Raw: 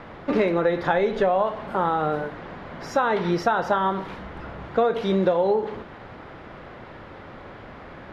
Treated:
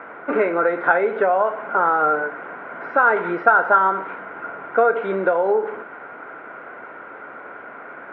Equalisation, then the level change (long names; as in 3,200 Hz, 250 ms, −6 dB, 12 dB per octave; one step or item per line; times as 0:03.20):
loudspeaker in its box 280–2,500 Hz, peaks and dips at 280 Hz +4 dB, 440 Hz +6 dB, 680 Hz +6 dB, 1,000 Hz +5 dB, 1,600 Hz +10 dB, 2,300 Hz +5 dB
parametric band 1,400 Hz +11.5 dB 0.22 octaves
notch filter 1,700 Hz, Q 11
−2.0 dB